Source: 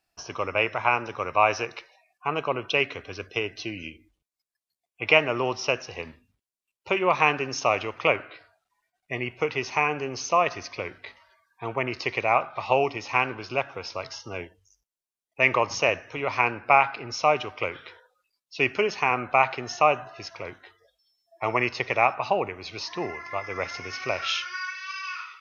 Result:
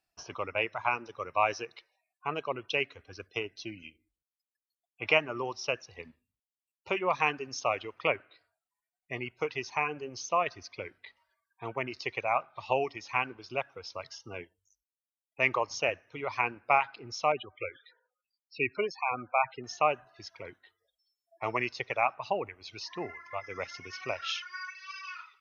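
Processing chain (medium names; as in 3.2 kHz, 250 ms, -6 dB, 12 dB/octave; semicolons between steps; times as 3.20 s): reverb removal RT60 1.6 s; 17.32–19.64 s: loudest bins only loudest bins 32; trim -6 dB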